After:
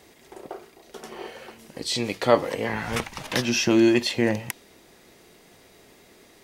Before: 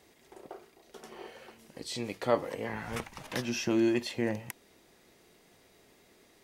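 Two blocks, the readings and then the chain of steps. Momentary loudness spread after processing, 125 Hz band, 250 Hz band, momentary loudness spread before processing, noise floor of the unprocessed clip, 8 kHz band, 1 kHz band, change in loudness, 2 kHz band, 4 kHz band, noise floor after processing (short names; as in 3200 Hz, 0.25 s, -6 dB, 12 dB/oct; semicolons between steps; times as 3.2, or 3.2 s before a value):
22 LU, +8.5 dB, +8.5 dB, 22 LU, -63 dBFS, +11.0 dB, +9.0 dB, +9.0 dB, +10.5 dB, +12.0 dB, -54 dBFS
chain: dynamic EQ 4000 Hz, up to +4 dB, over -53 dBFS, Q 0.76; gain +8.5 dB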